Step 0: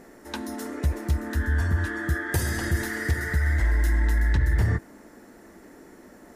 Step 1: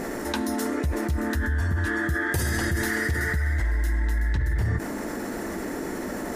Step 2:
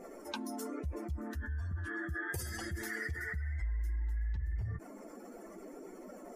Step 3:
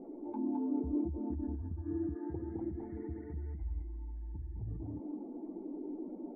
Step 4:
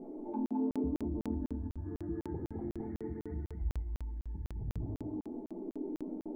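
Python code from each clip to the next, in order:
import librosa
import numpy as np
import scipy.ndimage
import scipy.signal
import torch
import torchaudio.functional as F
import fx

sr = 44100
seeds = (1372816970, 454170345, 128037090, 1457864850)

y1 = fx.env_flatten(x, sr, amount_pct=70)
y1 = F.gain(torch.from_numpy(y1), -4.0).numpy()
y2 = fx.bin_expand(y1, sr, power=2.0)
y2 = fx.peak_eq(y2, sr, hz=170.0, db=-4.0, octaves=1.9)
y2 = F.gain(torch.from_numpy(y2), -8.0).numpy()
y3 = fx.formant_cascade(y2, sr, vowel='u')
y3 = y3 + 10.0 ** (-4.0 / 20.0) * np.pad(y3, (int(211 * sr / 1000.0), 0))[:len(y3)]
y3 = F.gain(torch.from_numpy(y3), 11.0).numpy()
y4 = fx.room_shoebox(y3, sr, seeds[0], volume_m3=520.0, walls='furnished', distance_m=1.4)
y4 = fx.buffer_crackle(y4, sr, first_s=0.46, period_s=0.25, block=2048, kind='zero')
y4 = F.gain(torch.from_numpy(y4), 1.0).numpy()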